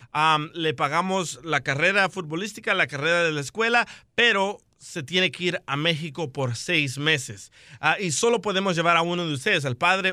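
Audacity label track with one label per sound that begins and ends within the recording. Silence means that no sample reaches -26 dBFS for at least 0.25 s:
4.180000	4.520000	sound
4.960000	7.310000	sound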